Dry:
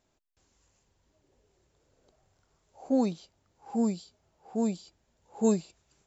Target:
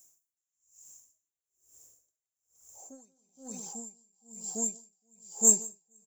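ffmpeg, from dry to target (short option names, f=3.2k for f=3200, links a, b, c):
-af "asoftclip=type=tanh:threshold=-17.5dB,bass=f=250:g=-3,treble=f=4k:g=8,bandreject=f=81.59:t=h:w=4,bandreject=f=163.18:t=h:w=4,bandreject=f=244.77:t=h:w=4,bandreject=f=326.36:t=h:w=4,bandreject=f=407.95:t=h:w=4,bandreject=f=489.54:t=h:w=4,bandreject=f=571.13:t=h:w=4,bandreject=f=652.72:t=h:w=4,bandreject=f=734.31:t=h:w=4,bandreject=f=815.9:t=h:w=4,bandreject=f=897.49:t=h:w=4,bandreject=f=979.08:t=h:w=4,bandreject=f=1.06067k:t=h:w=4,bandreject=f=1.14226k:t=h:w=4,bandreject=f=1.22385k:t=h:w=4,bandreject=f=1.30544k:t=h:w=4,bandreject=f=1.38703k:t=h:w=4,bandreject=f=1.46862k:t=h:w=4,bandreject=f=1.55021k:t=h:w=4,bandreject=f=1.6318k:t=h:w=4,bandreject=f=1.71339k:t=h:w=4,bandreject=f=1.79498k:t=h:w=4,bandreject=f=1.87657k:t=h:w=4,bandreject=f=1.95816k:t=h:w=4,bandreject=f=2.03975k:t=h:w=4,bandreject=f=2.12134k:t=h:w=4,bandreject=f=2.20293k:t=h:w=4,bandreject=f=2.28452k:t=h:w=4,bandreject=f=2.36611k:t=h:w=4,bandreject=f=2.4477k:t=h:w=4,aexciter=amount=11.5:drive=9.2:freq=6.4k,aecho=1:1:172|232|466|470|566:0.531|0.211|0.398|0.398|0.168,aeval=exprs='val(0)*pow(10,-39*(0.5-0.5*cos(2*PI*1.1*n/s))/20)':c=same,volume=-5.5dB"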